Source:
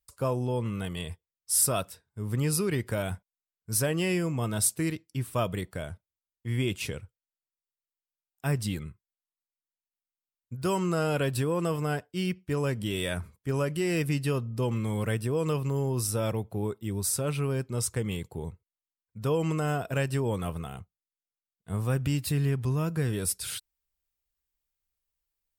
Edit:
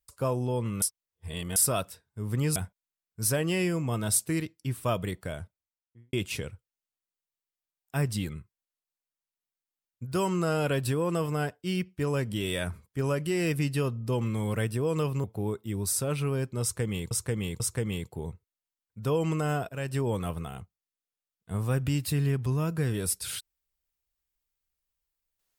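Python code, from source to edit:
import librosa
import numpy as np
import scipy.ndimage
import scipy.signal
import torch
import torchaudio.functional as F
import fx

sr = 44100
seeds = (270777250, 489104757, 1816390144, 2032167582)

y = fx.studio_fade_out(x, sr, start_s=5.9, length_s=0.73)
y = fx.edit(y, sr, fx.reverse_span(start_s=0.82, length_s=0.74),
    fx.cut(start_s=2.56, length_s=0.5),
    fx.cut(start_s=15.74, length_s=0.67),
    fx.repeat(start_s=17.79, length_s=0.49, count=3),
    fx.fade_in_from(start_s=19.88, length_s=0.32, floor_db=-13.5), tone=tone)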